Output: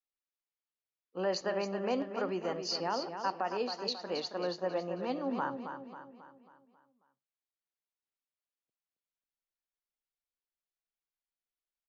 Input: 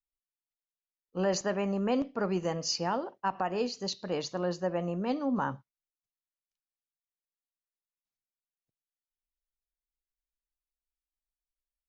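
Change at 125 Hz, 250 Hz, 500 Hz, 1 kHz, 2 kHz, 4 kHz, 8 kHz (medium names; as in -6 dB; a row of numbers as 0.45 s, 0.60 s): -10.0 dB, -6.0 dB, -2.0 dB, -2.0 dB, -1.5 dB, -0.5 dB, no reading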